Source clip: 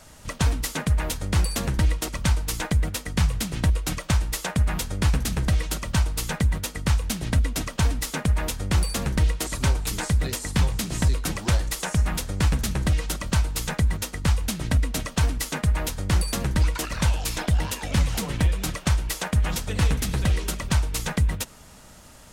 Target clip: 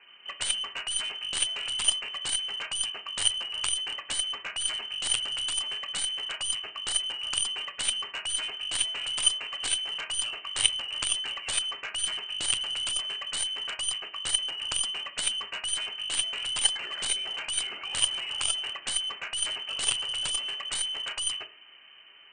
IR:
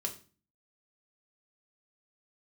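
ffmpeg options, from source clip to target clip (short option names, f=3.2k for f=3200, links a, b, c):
-filter_complex "[0:a]lowpass=f=2.6k:t=q:w=0.5098,lowpass=f=2.6k:t=q:w=0.6013,lowpass=f=2.6k:t=q:w=0.9,lowpass=f=2.6k:t=q:w=2.563,afreqshift=-3100,asplit=2[a][b];[1:a]atrim=start_sample=2205,lowshelf=f=170:g=-12[c];[b][c]afir=irnorm=-1:irlink=0,volume=1dB[d];[a][d]amix=inputs=2:normalize=0,aeval=exprs='0.75*(cos(1*acos(clip(val(0)/0.75,-1,1)))-cos(1*PI/2))+0.0335*(cos(2*acos(clip(val(0)/0.75,-1,1)))-cos(2*PI/2))+0.335*(cos(3*acos(clip(val(0)/0.75,-1,1)))-cos(3*PI/2))':c=same,volume=-1dB"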